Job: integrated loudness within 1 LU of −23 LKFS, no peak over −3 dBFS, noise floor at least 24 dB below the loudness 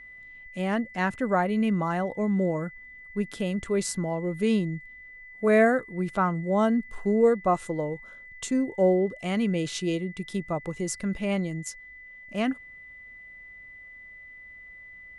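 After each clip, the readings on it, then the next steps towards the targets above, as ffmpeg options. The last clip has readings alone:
interfering tone 2,000 Hz; level of the tone −44 dBFS; integrated loudness −27.0 LKFS; sample peak −10.5 dBFS; target loudness −23.0 LKFS
→ -af "bandreject=frequency=2000:width=30"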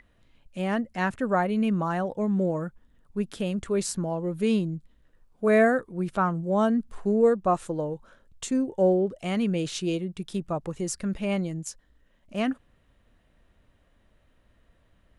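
interfering tone none found; integrated loudness −27.0 LKFS; sample peak −10.5 dBFS; target loudness −23.0 LKFS
→ -af "volume=4dB"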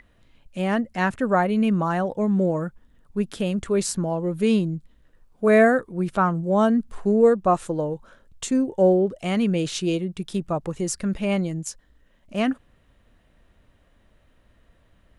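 integrated loudness −23.0 LKFS; sample peak −6.5 dBFS; background noise floor −61 dBFS

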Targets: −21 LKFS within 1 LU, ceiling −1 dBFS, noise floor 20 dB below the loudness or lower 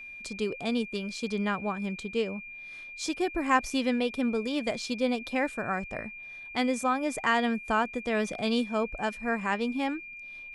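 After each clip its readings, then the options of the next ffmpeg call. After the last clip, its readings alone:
interfering tone 2,400 Hz; level of the tone −41 dBFS; integrated loudness −30.0 LKFS; sample peak −10.0 dBFS; target loudness −21.0 LKFS
→ -af "bandreject=frequency=2400:width=30"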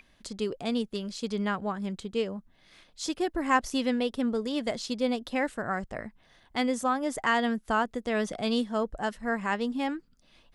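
interfering tone none found; integrated loudness −30.0 LKFS; sample peak −10.5 dBFS; target loudness −21.0 LKFS
→ -af "volume=9dB"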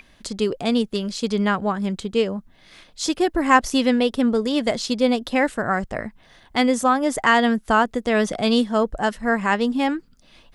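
integrated loudness −21.0 LKFS; sample peak −1.5 dBFS; background noise floor −54 dBFS

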